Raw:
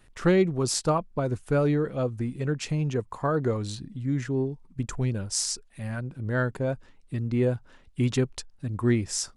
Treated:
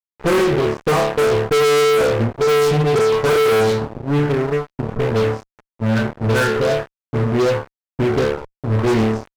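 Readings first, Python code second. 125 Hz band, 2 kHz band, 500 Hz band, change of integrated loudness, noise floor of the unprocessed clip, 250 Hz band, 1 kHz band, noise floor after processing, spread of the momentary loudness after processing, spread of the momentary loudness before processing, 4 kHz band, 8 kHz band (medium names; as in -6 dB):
+6.0 dB, +13.0 dB, +13.0 dB, +10.0 dB, -57 dBFS, +6.5 dB, +13.0 dB, under -85 dBFS, 8 LU, 11 LU, +9.5 dB, 0.0 dB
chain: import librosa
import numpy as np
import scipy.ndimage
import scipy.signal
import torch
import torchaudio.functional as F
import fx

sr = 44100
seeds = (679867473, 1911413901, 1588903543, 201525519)

y = x + 10.0 ** (-49.0 / 20.0) * np.sin(2.0 * np.pi * 580.0 * np.arange(len(x)) / sr)
y = fx.resonator_bank(y, sr, root=38, chord='fifth', decay_s=0.63)
y = fx.small_body(y, sr, hz=(440.0, 1500.0), ring_ms=90, db=17)
y = fx.env_lowpass(y, sr, base_hz=410.0, full_db=-24.5)
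y = fx.fuzz(y, sr, gain_db=45.0, gate_db=-50.0)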